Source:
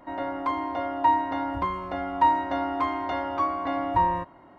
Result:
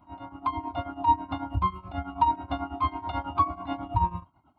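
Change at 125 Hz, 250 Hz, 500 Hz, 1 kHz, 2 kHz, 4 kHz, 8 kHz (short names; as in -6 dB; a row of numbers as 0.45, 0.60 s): +7.0 dB, -4.5 dB, -9.0 dB, -2.5 dB, -9.5 dB, -2.0 dB, n/a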